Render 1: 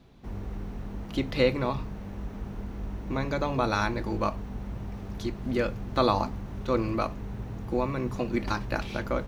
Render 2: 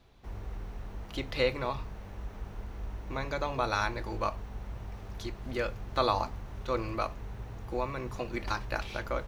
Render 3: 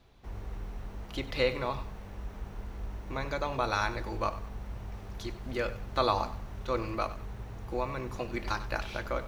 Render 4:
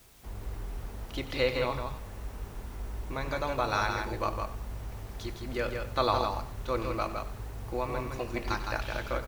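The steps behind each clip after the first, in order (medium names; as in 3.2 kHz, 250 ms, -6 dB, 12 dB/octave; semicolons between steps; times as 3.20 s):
peaking EQ 210 Hz -11 dB 1.6 oct; trim -1.5 dB
bit-crushed delay 95 ms, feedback 35%, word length 9-bit, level -14.5 dB
word length cut 10-bit, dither triangular; delay 162 ms -5 dB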